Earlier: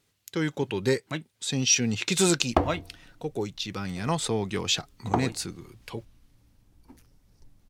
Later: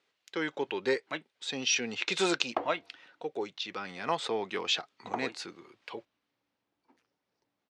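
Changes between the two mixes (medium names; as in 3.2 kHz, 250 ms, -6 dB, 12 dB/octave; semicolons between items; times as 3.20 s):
background -7.5 dB; master: add band-pass 440–3600 Hz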